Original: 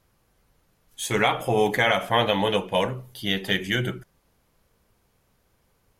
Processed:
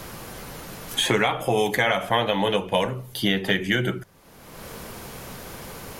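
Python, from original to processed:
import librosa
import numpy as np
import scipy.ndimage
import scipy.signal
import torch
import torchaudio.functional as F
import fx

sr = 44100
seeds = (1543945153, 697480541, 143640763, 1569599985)

y = fx.hum_notches(x, sr, base_hz=50, count=2)
y = fx.band_squash(y, sr, depth_pct=100)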